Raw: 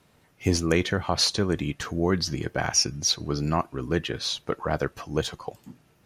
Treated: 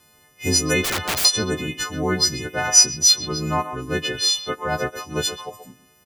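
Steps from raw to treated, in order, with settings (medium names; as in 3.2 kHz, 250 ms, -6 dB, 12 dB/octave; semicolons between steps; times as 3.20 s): partials quantised in pitch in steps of 3 st; speakerphone echo 130 ms, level -10 dB; 0.84–1.25 s: integer overflow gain 18.5 dB; trim +1 dB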